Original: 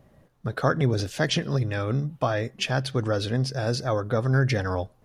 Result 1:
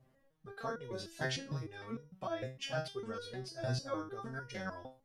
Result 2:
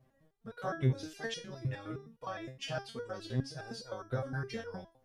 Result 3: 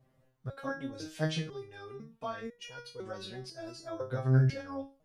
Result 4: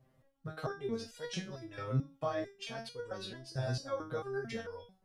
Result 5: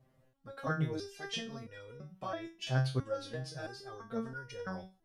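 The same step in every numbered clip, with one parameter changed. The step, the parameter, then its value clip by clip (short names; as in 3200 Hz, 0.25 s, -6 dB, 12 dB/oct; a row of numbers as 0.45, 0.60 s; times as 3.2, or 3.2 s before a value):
stepped resonator, rate: 6.6, 9.7, 2, 4.5, 3 Hz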